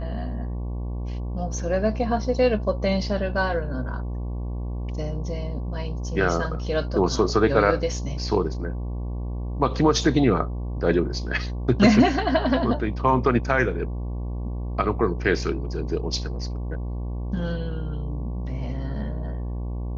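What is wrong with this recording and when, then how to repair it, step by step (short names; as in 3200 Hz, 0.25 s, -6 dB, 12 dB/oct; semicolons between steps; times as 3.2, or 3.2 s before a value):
buzz 60 Hz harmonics 19 -29 dBFS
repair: de-hum 60 Hz, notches 19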